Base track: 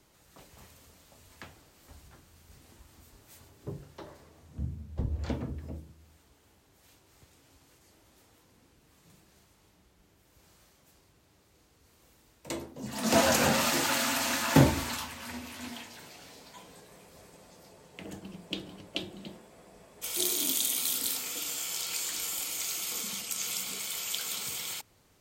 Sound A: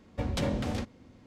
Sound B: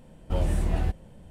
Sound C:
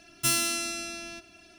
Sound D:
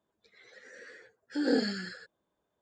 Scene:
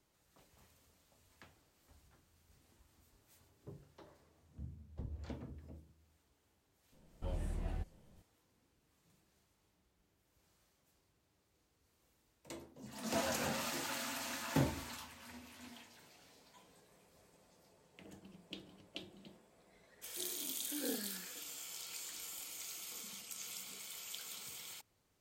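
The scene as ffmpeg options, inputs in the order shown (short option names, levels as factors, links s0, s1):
-filter_complex "[0:a]volume=0.224[s0];[2:a]atrim=end=1.3,asetpts=PTS-STARTPTS,volume=0.178,afade=t=in:d=0.004:c=hsin,afade=t=out:st=1.296:d=0.004:c=hsin,adelay=6920[s1];[4:a]atrim=end=2.61,asetpts=PTS-STARTPTS,volume=0.188,afade=t=in:d=0.004:c=hsin,afade=t=out:st=2.606:d=0.004:c=hsin,adelay=19360[s2];[s0][s1][s2]amix=inputs=3:normalize=0"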